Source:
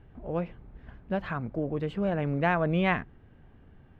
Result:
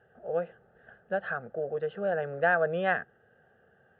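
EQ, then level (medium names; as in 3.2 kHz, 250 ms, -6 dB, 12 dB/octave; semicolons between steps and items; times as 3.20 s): cabinet simulation 250–2800 Hz, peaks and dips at 320 Hz +6 dB, 480 Hz +6 dB, 770 Hz +3 dB, 1.6 kHz +7 dB; static phaser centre 1.5 kHz, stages 8; 0.0 dB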